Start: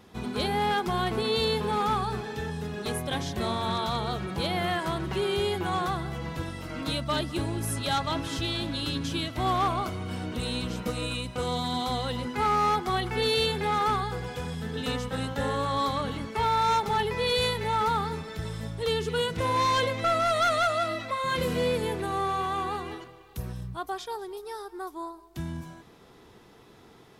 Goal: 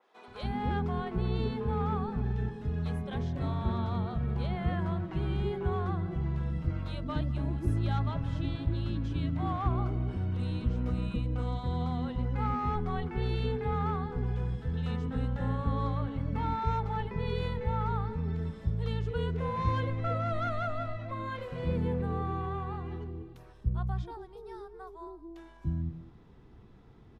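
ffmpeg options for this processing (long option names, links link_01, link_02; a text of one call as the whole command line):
ffmpeg -i in.wav -filter_complex "[0:a]aemphasis=mode=reproduction:type=riaa,acrossover=split=500[link_01][link_02];[link_01]adelay=280[link_03];[link_03][link_02]amix=inputs=2:normalize=0,adynamicequalizer=threshold=0.00562:dfrequency=3000:dqfactor=0.7:tfrequency=3000:tqfactor=0.7:attack=5:release=100:ratio=0.375:range=3.5:mode=cutabove:tftype=highshelf,volume=-8.5dB" out.wav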